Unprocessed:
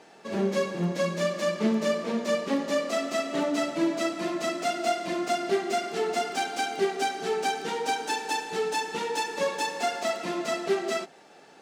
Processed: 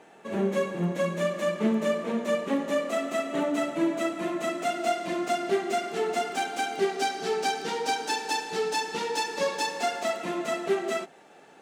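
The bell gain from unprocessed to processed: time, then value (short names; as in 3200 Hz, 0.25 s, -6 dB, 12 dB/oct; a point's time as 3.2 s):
bell 4900 Hz 0.58 oct
4.38 s -13 dB
4.97 s -5.5 dB
6.63 s -5.5 dB
7.09 s +3.5 dB
9.63 s +3.5 dB
10.3 s -8.5 dB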